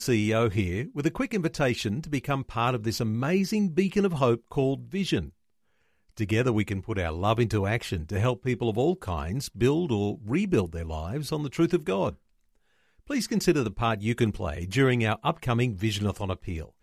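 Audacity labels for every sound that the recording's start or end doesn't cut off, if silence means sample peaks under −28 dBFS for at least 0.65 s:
6.200000	12.100000	sound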